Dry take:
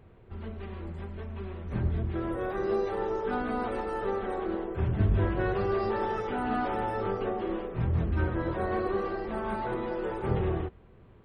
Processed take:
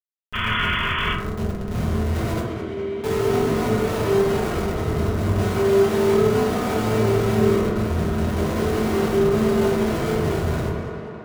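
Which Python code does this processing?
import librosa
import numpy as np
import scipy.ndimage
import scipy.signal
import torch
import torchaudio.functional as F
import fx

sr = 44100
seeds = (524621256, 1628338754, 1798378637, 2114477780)

y = fx.schmitt(x, sr, flips_db=-32.5)
y = fx.vowel_filter(y, sr, vowel='i', at=(2.4, 3.04))
y = fx.echo_tape(y, sr, ms=204, feedback_pct=84, wet_db=-6.5, lp_hz=4100.0, drive_db=24.0, wow_cents=37)
y = fx.spec_paint(y, sr, seeds[0], shape='noise', start_s=0.33, length_s=0.8, low_hz=930.0, high_hz=3500.0, level_db=-29.0)
y = fx.rev_fdn(y, sr, rt60_s=0.84, lf_ratio=1.55, hf_ratio=0.35, size_ms=14.0, drr_db=-5.5)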